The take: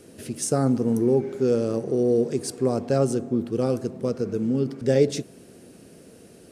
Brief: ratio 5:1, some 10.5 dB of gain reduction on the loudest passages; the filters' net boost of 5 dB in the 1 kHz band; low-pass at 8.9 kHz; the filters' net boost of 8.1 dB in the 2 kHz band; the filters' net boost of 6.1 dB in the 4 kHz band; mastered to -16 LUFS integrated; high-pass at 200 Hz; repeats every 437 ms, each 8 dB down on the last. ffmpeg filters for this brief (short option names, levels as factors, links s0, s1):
-af "highpass=200,lowpass=8900,equalizer=f=1000:t=o:g=5.5,equalizer=f=2000:t=o:g=7,equalizer=f=4000:t=o:g=6.5,acompressor=threshold=0.0562:ratio=5,aecho=1:1:437|874|1311|1748|2185:0.398|0.159|0.0637|0.0255|0.0102,volume=4.73"